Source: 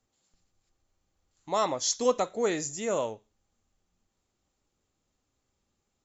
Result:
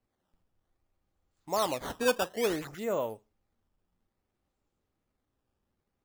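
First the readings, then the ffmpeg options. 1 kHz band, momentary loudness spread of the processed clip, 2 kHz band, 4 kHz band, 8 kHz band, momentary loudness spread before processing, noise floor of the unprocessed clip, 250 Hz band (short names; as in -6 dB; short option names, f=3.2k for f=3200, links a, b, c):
-3.0 dB, 6 LU, +4.0 dB, -2.5 dB, n/a, 6 LU, -80 dBFS, -1.5 dB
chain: -af "highshelf=f=3.7k:g=-11.5,acrusher=samples=12:mix=1:aa=0.000001:lfo=1:lforange=19.2:lforate=0.59,volume=-1.5dB"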